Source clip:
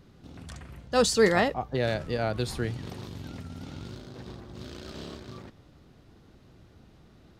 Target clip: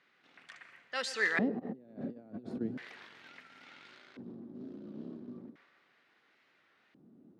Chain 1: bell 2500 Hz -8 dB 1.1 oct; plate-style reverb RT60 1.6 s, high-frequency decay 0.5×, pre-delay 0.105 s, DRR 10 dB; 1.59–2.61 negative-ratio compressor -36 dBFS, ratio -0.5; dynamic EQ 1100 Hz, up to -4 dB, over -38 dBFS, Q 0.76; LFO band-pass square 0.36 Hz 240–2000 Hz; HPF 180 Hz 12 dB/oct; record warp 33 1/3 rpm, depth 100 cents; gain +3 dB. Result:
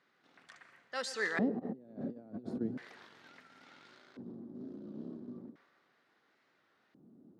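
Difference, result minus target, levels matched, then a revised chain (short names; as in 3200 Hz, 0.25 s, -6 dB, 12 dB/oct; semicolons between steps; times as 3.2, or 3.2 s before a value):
2000 Hz band -2.5 dB
plate-style reverb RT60 1.6 s, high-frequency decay 0.5×, pre-delay 0.105 s, DRR 10 dB; 1.59–2.61 negative-ratio compressor -36 dBFS, ratio -0.5; dynamic EQ 1100 Hz, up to -4 dB, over -38 dBFS, Q 0.76; LFO band-pass square 0.36 Hz 240–2000 Hz; HPF 180 Hz 12 dB/oct; record warp 33 1/3 rpm, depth 100 cents; gain +3 dB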